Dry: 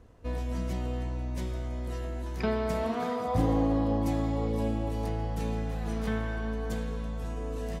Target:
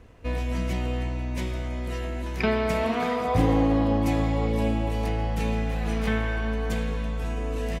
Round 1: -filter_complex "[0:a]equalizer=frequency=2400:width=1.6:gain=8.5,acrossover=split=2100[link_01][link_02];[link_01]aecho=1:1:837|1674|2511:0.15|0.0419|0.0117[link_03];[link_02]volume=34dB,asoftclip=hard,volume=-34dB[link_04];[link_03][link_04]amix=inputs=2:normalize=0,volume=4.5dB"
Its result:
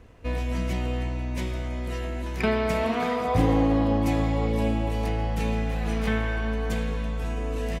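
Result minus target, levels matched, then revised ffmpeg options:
gain into a clipping stage and back: distortion +22 dB
-filter_complex "[0:a]equalizer=frequency=2400:width=1.6:gain=8.5,acrossover=split=2100[link_01][link_02];[link_01]aecho=1:1:837|1674|2511:0.15|0.0419|0.0117[link_03];[link_02]volume=25dB,asoftclip=hard,volume=-25dB[link_04];[link_03][link_04]amix=inputs=2:normalize=0,volume=4.5dB"

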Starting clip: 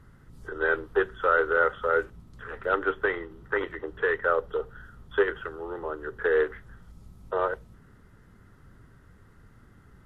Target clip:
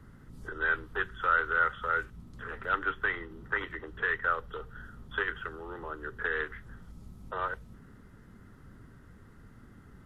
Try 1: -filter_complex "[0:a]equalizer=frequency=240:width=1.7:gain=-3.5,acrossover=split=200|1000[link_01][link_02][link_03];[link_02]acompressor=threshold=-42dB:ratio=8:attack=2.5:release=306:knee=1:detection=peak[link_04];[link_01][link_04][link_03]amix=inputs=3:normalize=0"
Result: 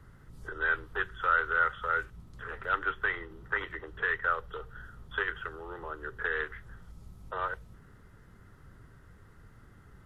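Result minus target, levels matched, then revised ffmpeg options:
250 Hz band −3.5 dB
-filter_complex "[0:a]equalizer=frequency=240:width=1.7:gain=5,acrossover=split=200|1000[link_01][link_02][link_03];[link_02]acompressor=threshold=-42dB:ratio=8:attack=2.5:release=306:knee=1:detection=peak[link_04];[link_01][link_04][link_03]amix=inputs=3:normalize=0"

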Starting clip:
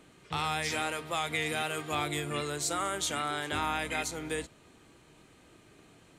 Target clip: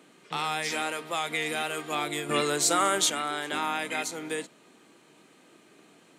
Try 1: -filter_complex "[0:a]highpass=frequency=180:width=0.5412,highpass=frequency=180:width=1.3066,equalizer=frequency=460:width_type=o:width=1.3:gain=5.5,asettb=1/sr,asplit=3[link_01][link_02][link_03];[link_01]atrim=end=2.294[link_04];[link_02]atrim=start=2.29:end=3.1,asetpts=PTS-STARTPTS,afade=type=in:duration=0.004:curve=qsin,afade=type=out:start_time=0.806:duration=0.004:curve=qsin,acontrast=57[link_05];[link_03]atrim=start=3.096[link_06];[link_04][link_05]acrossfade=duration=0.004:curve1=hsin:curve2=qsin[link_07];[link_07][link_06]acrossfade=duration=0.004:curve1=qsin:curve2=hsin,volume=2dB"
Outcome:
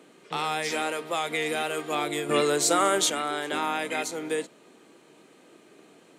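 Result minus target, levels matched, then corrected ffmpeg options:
500 Hz band +3.5 dB
-filter_complex "[0:a]highpass=frequency=180:width=0.5412,highpass=frequency=180:width=1.3066,asettb=1/sr,asplit=3[link_01][link_02][link_03];[link_01]atrim=end=2.294[link_04];[link_02]atrim=start=2.29:end=3.1,asetpts=PTS-STARTPTS,afade=type=in:duration=0.004:curve=qsin,afade=type=out:start_time=0.806:duration=0.004:curve=qsin,acontrast=57[link_05];[link_03]atrim=start=3.096[link_06];[link_04][link_05]acrossfade=duration=0.004:curve1=hsin:curve2=qsin[link_07];[link_07][link_06]acrossfade=duration=0.004:curve1=qsin:curve2=hsin,volume=2dB"

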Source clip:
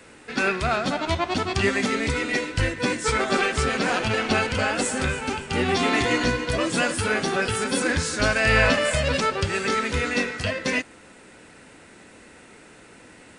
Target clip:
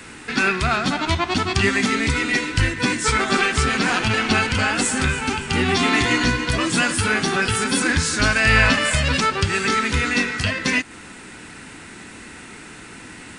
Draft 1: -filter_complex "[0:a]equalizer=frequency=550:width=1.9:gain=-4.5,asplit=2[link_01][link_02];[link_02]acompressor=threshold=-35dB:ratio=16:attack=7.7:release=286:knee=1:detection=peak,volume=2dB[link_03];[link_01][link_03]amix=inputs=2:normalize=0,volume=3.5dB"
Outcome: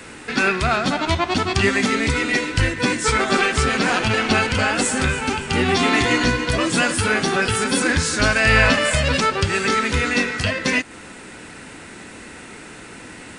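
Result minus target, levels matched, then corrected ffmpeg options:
500 Hz band +3.0 dB
-filter_complex "[0:a]equalizer=frequency=550:width=1.9:gain=-11,asplit=2[link_01][link_02];[link_02]acompressor=threshold=-35dB:ratio=16:attack=7.7:release=286:knee=1:detection=peak,volume=2dB[link_03];[link_01][link_03]amix=inputs=2:normalize=0,volume=3.5dB"

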